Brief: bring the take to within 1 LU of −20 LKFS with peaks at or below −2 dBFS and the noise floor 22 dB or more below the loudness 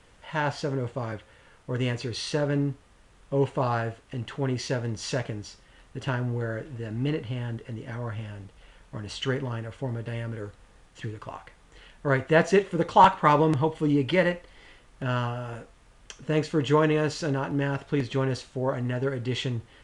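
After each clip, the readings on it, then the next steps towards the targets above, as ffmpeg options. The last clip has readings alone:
integrated loudness −27.5 LKFS; sample peak −5.5 dBFS; target loudness −20.0 LKFS
→ -af "volume=7.5dB,alimiter=limit=-2dB:level=0:latency=1"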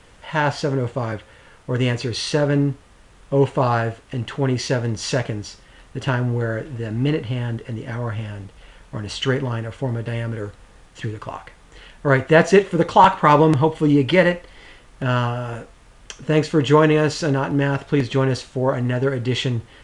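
integrated loudness −20.5 LKFS; sample peak −2.0 dBFS; background noise floor −49 dBFS

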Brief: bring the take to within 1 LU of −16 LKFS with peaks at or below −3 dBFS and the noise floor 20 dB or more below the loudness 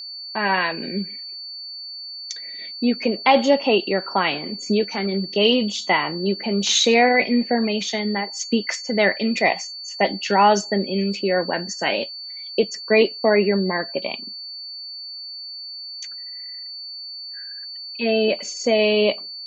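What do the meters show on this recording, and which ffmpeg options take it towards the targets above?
interfering tone 4,500 Hz; level of the tone −32 dBFS; integrated loudness −21.0 LKFS; sample peak −4.0 dBFS; target loudness −16.0 LKFS
→ -af "bandreject=frequency=4500:width=30"
-af "volume=5dB,alimiter=limit=-3dB:level=0:latency=1"

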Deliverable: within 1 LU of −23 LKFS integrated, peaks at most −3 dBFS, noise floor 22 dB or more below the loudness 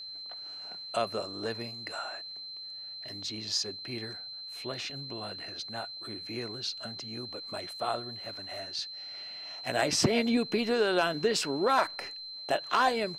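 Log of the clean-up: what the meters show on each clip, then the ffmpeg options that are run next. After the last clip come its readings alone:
interfering tone 4,100 Hz; level of the tone −40 dBFS; integrated loudness −32.5 LKFS; sample peak −13.0 dBFS; target loudness −23.0 LKFS
→ -af "bandreject=frequency=4100:width=30"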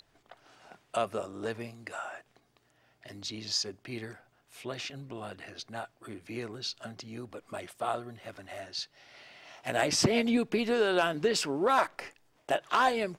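interfering tone none found; integrated loudness −32.0 LKFS; sample peak −13.5 dBFS; target loudness −23.0 LKFS
→ -af "volume=9dB"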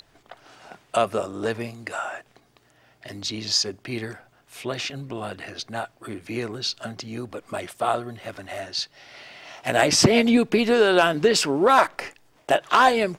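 integrated loudness −23.0 LKFS; sample peak −4.5 dBFS; background noise floor −61 dBFS

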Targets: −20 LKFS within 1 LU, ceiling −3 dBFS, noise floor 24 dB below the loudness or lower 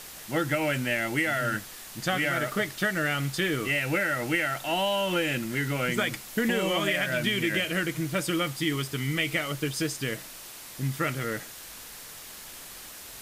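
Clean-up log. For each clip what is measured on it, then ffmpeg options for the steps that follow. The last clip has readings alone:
background noise floor −44 dBFS; target noise floor −52 dBFS; integrated loudness −27.5 LKFS; sample peak −12.5 dBFS; target loudness −20.0 LKFS
→ -af "afftdn=noise_reduction=8:noise_floor=-44"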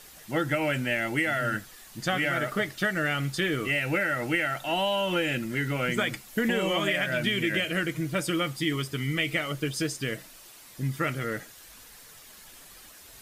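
background noise floor −50 dBFS; target noise floor −52 dBFS
→ -af "afftdn=noise_reduction=6:noise_floor=-50"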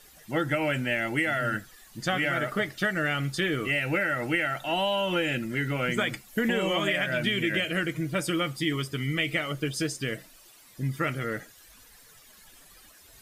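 background noise floor −54 dBFS; integrated loudness −28.0 LKFS; sample peak −13.0 dBFS; target loudness −20.0 LKFS
→ -af "volume=8dB"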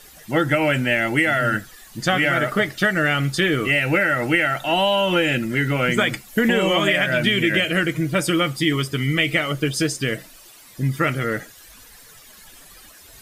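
integrated loudness −20.0 LKFS; sample peak −5.0 dBFS; background noise floor −46 dBFS

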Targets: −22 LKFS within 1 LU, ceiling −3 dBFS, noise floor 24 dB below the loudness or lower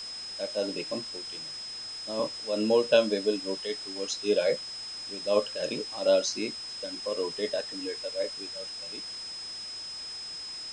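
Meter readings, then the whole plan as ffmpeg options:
interfering tone 5,100 Hz; level of the tone −37 dBFS; background noise floor −40 dBFS; target noise floor −55 dBFS; integrated loudness −30.5 LKFS; sample peak −8.5 dBFS; target loudness −22.0 LKFS
→ -af "bandreject=frequency=5100:width=30"
-af "afftdn=noise_reduction=15:noise_floor=-40"
-af "volume=8.5dB,alimiter=limit=-3dB:level=0:latency=1"

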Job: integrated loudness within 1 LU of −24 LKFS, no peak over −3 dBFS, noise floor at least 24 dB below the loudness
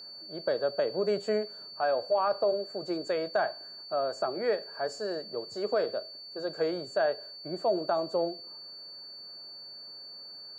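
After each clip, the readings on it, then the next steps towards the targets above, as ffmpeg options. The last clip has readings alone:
interfering tone 4,500 Hz; level of the tone −43 dBFS; integrated loudness −31.5 LKFS; sample peak −16.0 dBFS; target loudness −24.0 LKFS
→ -af "bandreject=frequency=4500:width=30"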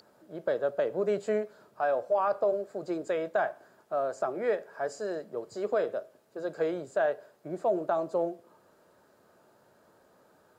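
interfering tone none found; integrated loudness −31.5 LKFS; sample peak −16.0 dBFS; target loudness −24.0 LKFS
→ -af "volume=7.5dB"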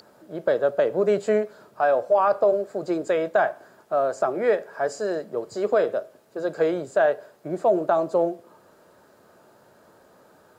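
integrated loudness −24.0 LKFS; sample peak −8.5 dBFS; background noise floor −56 dBFS

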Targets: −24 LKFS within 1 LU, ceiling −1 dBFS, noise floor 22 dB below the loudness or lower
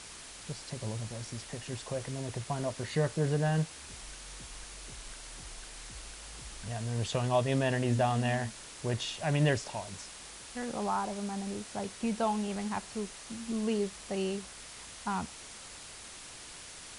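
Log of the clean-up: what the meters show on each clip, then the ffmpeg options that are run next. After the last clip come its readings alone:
background noise floor −48 dBFS; target noise floor −57 dBFS; integrated loudness −34.5 LKFS; sample peak −16.0 dBFS; target loudness −24.0 LKFS
→ -af "afftdn=noise_reduction=9:noise_floor=-48"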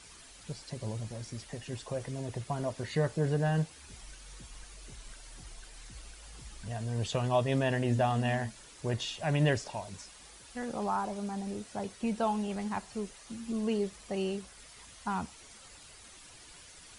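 background noise floor −53 dBFS; target noise floor −56 dBFS
→ -af "afftdn=noise_reduction=6:noise_floor=-53"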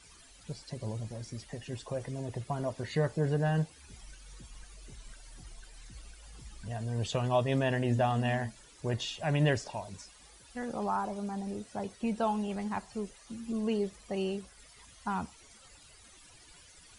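background noise floor −57 dBFS; integrated loudness −34.0 LKFS; sample peak −16.0 dBFS; target loudness −24.0 LKFS
→ -af "volume=10dB"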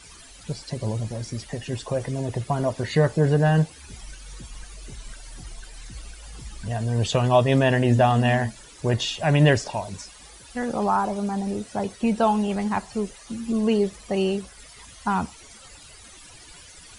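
integrated loudness −24.0 LKFS; sample peak −6.0 dBFS; background noise floor −47 dBFS

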